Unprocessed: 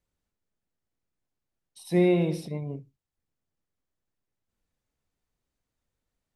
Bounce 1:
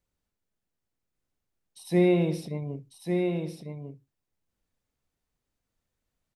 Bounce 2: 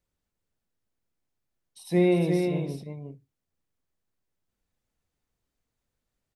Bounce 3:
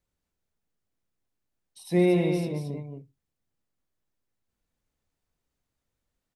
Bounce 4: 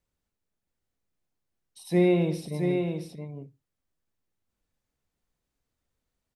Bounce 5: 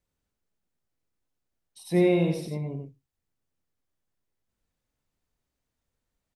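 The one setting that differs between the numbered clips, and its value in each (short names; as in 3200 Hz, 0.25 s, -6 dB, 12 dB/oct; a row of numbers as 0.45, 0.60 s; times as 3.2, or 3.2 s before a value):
echo, time: 1148, 353, 224, 671, 93 ms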